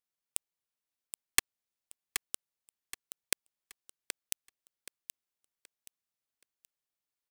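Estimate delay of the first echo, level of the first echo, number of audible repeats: 775 ms, −9.0 dB, 3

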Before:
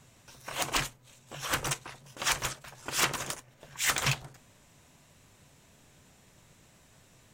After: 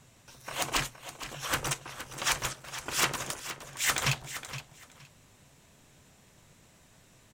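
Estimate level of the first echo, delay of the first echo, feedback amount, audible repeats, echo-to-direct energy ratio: −12.0 dB, 468 ms, 19%, 2, −12.0 dB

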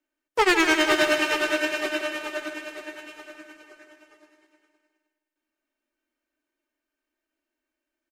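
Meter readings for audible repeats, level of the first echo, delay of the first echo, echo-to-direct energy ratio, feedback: 5, −10.0 dB, 156 ms, −8.5 dB, 52%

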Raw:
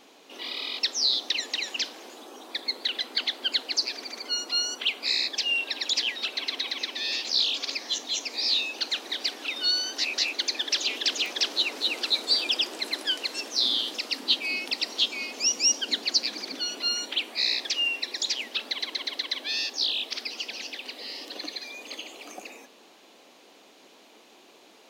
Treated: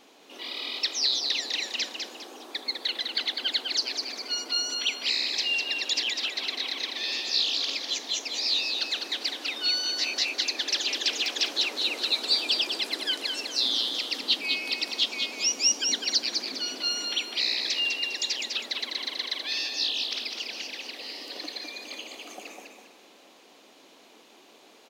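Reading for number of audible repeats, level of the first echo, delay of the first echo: 3, −5.0 dB, 202 ms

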